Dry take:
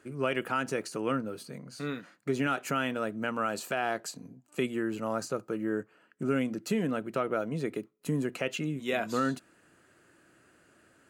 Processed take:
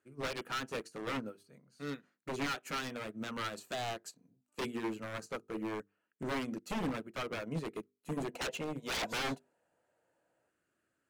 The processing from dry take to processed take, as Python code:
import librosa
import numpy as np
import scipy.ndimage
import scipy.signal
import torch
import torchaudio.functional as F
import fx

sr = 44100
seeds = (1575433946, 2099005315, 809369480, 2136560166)

y = fx.notch(x, sr, hz=4800.0, q=30.0)
y = fx.spec_box(y, sr, start_s=8.29, length_s=2.2, low_hz=440.0, high_hz=1000.0, gain_db=12)
y = fx.hum_notches(y, sr, base_hz=50, count=9)
y = 10.0 ** (-28.5 / 20.0) * (np.abs((y / 10.0 ** (-28.5 / 20.0) + 3.0) % 4.0 - 2.0) - 1.0)
y = fx.upward_expand(y, sr, threshold_db=-45.0, expansion=2.5)